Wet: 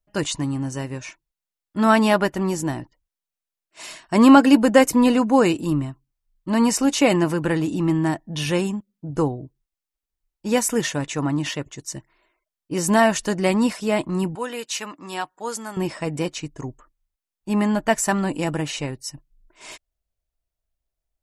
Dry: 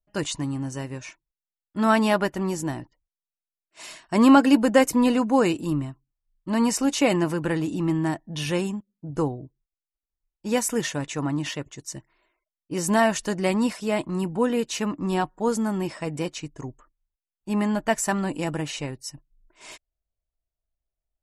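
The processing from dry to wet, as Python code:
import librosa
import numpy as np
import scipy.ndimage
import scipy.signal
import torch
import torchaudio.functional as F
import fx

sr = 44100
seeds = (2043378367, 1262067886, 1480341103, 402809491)

y = fx.highpass(x, sr, hz=1400.0, slope=6, at=(14.35, 15.77))
y = y * 10.0 ** (3.5 / 20.0)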